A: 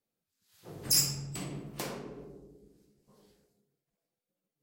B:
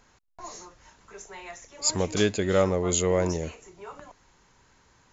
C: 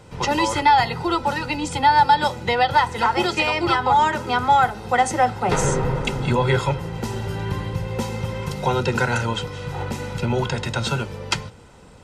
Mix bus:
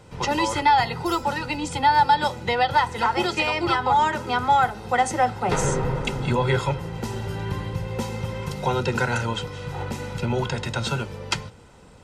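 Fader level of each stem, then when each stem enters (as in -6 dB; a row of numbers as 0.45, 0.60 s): -16.5 dB, off, -2.5 dB; 0.15 s, off, 0.00 s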